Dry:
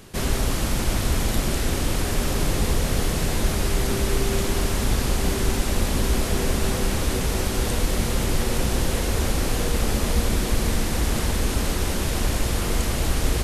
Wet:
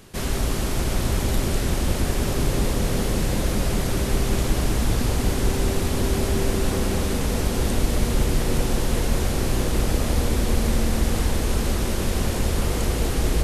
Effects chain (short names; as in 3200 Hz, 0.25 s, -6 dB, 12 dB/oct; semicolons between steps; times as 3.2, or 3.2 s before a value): dark delay 0.187 s, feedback 82%, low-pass 760 Hz, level -4 dB; gain -2 dB